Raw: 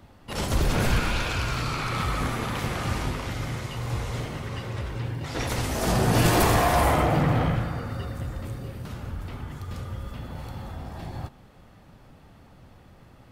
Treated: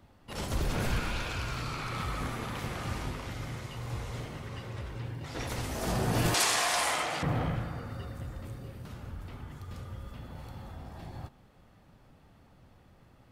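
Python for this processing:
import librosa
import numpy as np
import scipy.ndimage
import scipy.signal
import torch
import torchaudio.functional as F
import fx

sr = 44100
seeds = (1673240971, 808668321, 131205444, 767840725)

y = fx.weighting(x, sr, curve='ITU-R 468', at=(6.34, 7.23))
y = y * 10.0 ** (-7.5 / 20.0)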